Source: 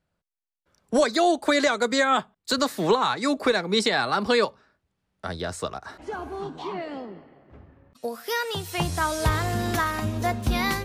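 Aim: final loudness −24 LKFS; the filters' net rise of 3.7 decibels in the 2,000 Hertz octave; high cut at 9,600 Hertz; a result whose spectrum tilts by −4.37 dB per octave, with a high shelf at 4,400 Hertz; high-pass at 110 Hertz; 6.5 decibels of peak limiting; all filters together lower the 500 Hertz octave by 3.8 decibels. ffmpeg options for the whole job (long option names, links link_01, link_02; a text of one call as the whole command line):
ffmpeg -i in.wav -af "highpass=110,lowpass=9600,equalizer=frequency=500:width_type=o:gain=-5,equalizer=frequency=2000:width_type=o:gain=6,highshelf=frequency=4400:gain=-6,volume=3.5dB,alimiter=limit=-12.5dB:level=0:latency=1" out.wav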